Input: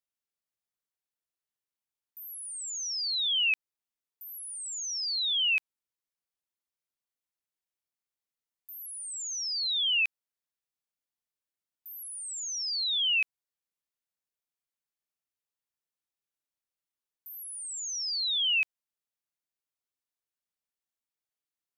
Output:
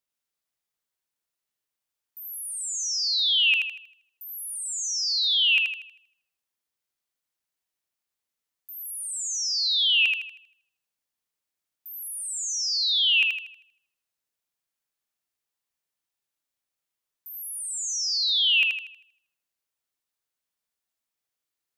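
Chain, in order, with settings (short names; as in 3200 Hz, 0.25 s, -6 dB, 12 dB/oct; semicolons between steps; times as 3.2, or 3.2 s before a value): thinning echo 79 ms, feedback 42%, high-pass 750 Hz, level -3 dB; gain +4 dB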